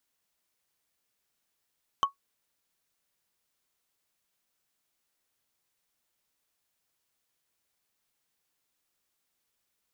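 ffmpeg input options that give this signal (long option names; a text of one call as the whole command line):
ffmpeg -f lavfi -i "aevalsrc='0.158*pow(10,-3*t/0.12)*sin(2*PI*1110*t)+0.0596*pow(10,-3*t/0.036)*sin(2*PI*3060.3*t)+0.0224*pow(10,-3*t/0.016)*sin(2*PI*5998.4*t)+0.00841*pow(10,-3*t/0.009)*sin(2*PI*9915.6*t)+0.00316*pow(10,-3*t/0.005)*sin(2*PI*14807.4*t)':duration=0.45:sample_rate=44100" out.wav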